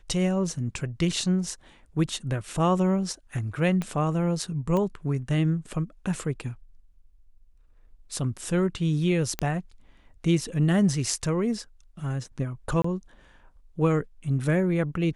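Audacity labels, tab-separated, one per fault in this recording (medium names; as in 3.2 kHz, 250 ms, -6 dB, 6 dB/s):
3.820000	3.820000	pop -17 dBFS
4.770000	4.770000	pop -17 dBFS
9.390000	9.390000	pop -11 dBFS
12.820000	12.840000	dropout 24 ms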